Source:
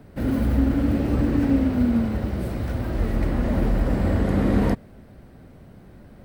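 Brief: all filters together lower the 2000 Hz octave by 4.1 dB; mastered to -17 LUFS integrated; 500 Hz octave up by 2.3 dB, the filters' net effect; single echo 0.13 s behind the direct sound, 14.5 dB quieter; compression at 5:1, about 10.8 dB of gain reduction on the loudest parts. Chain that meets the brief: bell 500 Hz +3 dB; bell 2000 Hz -5.5 dB; compressor 5:1, threshold -28 dBFS; echo 0.13 s -14.5 dB; gain +15 dB

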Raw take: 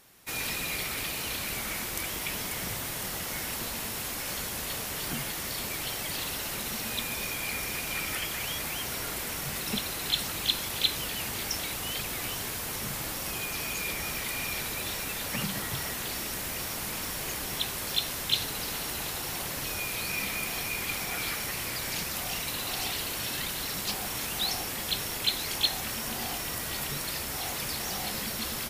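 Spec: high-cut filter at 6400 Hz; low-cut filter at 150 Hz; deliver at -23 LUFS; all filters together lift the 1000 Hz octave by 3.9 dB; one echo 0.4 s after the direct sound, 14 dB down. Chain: HPF 150 Hz; LPF 6400 Hz; bell 1000 Hz +5 dB; echo 0.4 s -14 dB; gain +9.5 dB

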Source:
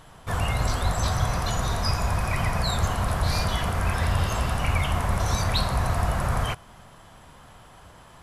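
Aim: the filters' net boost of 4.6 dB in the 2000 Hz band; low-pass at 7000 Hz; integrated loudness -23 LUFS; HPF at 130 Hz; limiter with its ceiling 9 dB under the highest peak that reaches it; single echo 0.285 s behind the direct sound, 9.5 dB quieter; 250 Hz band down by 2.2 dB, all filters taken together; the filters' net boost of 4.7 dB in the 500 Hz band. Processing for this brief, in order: HPF 130 Hz; LPF 7000 Hz; bell 250 Hz -3.5 dB; bell 500 Hz +6.5 dB; bell 2000 Hz +5.5 dB; limiter -21 dBFS; echo 0.285 s -9.5 dB; gain +6.5 dB

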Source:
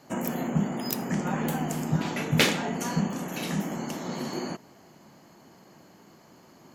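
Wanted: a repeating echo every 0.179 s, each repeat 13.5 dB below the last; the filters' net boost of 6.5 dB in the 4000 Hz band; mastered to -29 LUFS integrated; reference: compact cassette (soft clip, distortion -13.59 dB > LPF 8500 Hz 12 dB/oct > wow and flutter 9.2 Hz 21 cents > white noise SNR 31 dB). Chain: bell 4000 Hz +8.5 dB; feedback echo 0.179 s, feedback 21%, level -13.5 dB; soft clip -15 dBFS; LPF 8500 Hz 12 dB/oct; wow and flutter 9.2 Hz 21 cents; white noise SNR 31 dB; gain -0.5 dB

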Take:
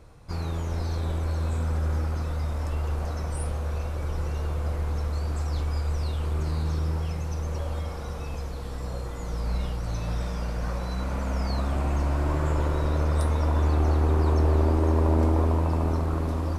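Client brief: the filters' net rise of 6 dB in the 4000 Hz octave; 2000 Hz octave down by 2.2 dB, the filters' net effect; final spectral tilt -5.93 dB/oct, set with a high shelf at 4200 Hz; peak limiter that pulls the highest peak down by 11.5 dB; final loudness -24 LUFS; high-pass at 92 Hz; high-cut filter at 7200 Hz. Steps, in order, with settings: HPF 92 Hz; LPF 7200 Hz; bell 2000 Hz -5.5 dB; bell 4000 Hz +6 dB; high shelf 4200 Hz +5 dB; gain +10 dB; limiter -14.5 dBFS

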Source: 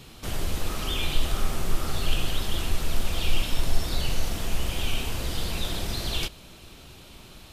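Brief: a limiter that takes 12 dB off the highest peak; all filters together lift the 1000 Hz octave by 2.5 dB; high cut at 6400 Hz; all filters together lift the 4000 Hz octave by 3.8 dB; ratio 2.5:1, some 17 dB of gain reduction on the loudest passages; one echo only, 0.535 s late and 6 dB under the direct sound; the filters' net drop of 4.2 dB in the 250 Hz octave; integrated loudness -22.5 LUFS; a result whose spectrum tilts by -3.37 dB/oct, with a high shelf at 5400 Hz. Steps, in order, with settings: LPF 6400 Hz; bell 250 Hz -6.5 dB; bell 1000 Hz +3.5 dB; bell 4000 Hz +7 dB; high shelf 5400 Hz -5 dB; compressor 2.5:1, threshold -41 dBFS; limiter -36.5 dBFS; echo 0.535 s -6 dB; gain +24 dB

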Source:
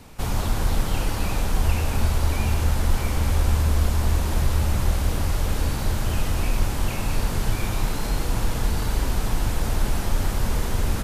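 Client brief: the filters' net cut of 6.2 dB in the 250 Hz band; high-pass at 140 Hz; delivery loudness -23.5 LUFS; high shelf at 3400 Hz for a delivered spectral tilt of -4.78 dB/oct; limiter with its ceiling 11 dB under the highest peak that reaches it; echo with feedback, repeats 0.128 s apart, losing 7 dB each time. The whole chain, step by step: HPF 140 Hz; bell 250 Hz -7.5 dB; high shelf 3400 Hz -8 dB; limiter -29.5 dBFS; feedback echo 0.128 s, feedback 45%, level -7 dB; gain +14 dB

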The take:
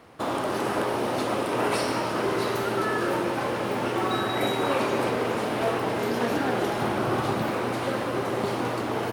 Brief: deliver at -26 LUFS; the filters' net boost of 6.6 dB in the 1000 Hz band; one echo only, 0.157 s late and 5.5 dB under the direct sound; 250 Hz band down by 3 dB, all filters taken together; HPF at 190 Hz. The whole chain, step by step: HPF 190 Hz; bell 250 Hz -3.5 dB; bell 1000 Hz +8.5 dB; echo 0.157 s -5.5 dB; gain -3.5 dB

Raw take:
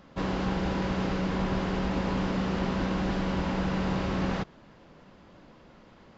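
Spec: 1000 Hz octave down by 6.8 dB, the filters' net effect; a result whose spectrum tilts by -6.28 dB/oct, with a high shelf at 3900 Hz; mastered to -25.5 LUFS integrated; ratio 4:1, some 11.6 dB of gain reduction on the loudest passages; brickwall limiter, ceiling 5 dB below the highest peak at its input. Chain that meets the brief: bell 1000 Hz -8.5 dB; high shelf 3900 Hz -3.5 dB; compressor 4:1, threshold -40 dBFS; gain +18 dB; limiter -16 dBFS

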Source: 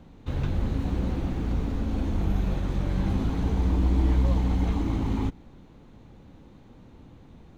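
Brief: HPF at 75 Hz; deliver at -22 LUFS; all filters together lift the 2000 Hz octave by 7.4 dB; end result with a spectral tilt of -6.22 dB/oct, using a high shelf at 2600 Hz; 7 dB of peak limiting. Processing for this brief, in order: HPF 75 Hz; bell 2000 Hz +6.5 dB; high shelf 2600 Hz +6 dB; gain +9.5 dB; limiter -12 dBFS

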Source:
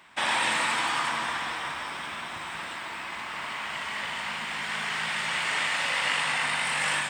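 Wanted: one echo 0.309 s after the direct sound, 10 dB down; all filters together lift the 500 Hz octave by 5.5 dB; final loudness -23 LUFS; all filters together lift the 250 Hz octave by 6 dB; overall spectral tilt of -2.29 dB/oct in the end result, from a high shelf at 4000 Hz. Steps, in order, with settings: bell 250 Hz +6 dB; bell 500 Hz +6 dB; high shelf 4000 Hz -6.5 dB; echo 0.309 s -10 dB; gain +5.5 dB

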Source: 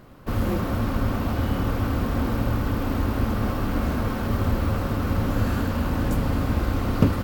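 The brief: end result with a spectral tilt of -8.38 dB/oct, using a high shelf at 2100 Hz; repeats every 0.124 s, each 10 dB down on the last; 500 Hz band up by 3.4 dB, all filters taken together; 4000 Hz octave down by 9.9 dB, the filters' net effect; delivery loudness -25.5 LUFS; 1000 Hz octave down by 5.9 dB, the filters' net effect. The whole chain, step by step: bell 500 Hz +6.5 dB; bell 1000 Hz -8 dB; high shelf 2100 Hz -7.5 dB; bell 4000 Hz -5.5 dB; feedback echo 0.124 s, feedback 32%, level -10 dB; gain -1 dB

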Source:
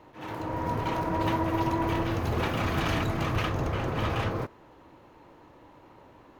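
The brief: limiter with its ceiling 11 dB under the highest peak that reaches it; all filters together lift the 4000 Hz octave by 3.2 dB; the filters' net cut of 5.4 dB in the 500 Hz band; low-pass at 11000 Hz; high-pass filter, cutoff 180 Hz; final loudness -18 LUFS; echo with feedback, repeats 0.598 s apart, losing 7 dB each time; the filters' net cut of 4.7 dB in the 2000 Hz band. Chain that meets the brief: HPF 180 Hz; LPF 11000 Hz; bell 500 Hz -7 dB; bell 2000 Hz -8 dB; bell 4000 Hz +8 dB; limiter -29.5 dBFS; feedback echo 0.598 s, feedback 45%, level -7 dB; gain +20 dB

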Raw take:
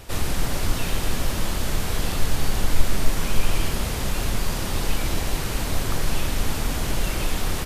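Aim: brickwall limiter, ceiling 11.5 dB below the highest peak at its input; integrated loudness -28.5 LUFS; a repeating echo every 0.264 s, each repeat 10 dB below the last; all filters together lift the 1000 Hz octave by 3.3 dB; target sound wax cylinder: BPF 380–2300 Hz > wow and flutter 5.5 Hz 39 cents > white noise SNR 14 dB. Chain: bell 1000 Hz +4.5 dB; limiter -14 dBFS; BPF 380–2300 Hz; feedback echo 0.264 s, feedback 32%, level -10 dB; wow and flutter 5.5 Hz 39 cents; white noise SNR 14 dB; gain +4.5 dB

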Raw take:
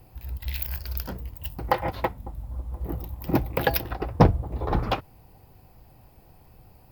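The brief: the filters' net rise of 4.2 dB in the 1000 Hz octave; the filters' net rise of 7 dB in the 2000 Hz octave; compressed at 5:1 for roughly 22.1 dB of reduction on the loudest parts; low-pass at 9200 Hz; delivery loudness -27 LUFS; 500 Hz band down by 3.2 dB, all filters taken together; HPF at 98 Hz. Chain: HPF 98 Hz; LPF 9200 Hz; bell 500 Hz -6 dB; bell 1000 Hz +6 dB; bell 2000 Hz +7 dB; compressor 5:1, threshold -39 dBFS; gain +16.5 dB

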